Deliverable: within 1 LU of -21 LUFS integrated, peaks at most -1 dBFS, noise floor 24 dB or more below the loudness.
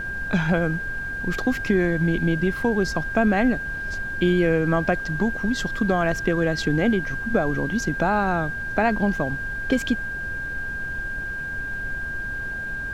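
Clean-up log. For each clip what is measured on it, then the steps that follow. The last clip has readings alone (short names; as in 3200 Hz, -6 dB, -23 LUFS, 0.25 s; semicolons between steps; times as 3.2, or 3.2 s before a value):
steady tone 1600 Hz; tone level -28 dBFS; noise floor -30 dBFS; noise floor target -48 dBFS; loudness -24.0 LUFS; peak -8.0 dBFS; loudness target -21.0 LUFS
-> notch 1600 Hz, Q 30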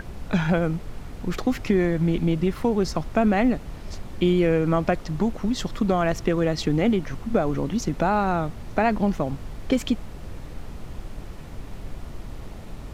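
steady tone none; noise floor -39 dBFS; noise floor target -48 dBFS
-> noise print and reduce 9 dB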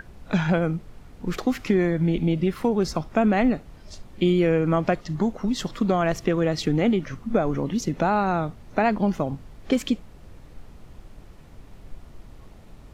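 noise floor -47 dBFS; noise floor target -48 dBFS
-> noise print and reduce 6 dB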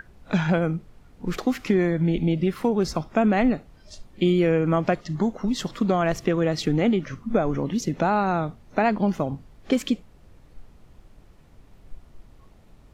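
noise floor -53 dBFS; loudness -24.0 LUFS; peak -8.5 dBFS; loudness target -21.0 LUFS
-> gain +3 dB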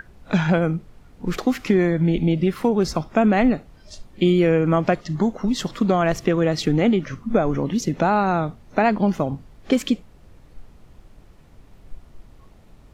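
loudness -21.0 LUFS; peak -5.5 dBFS; noise floor -50 dBFS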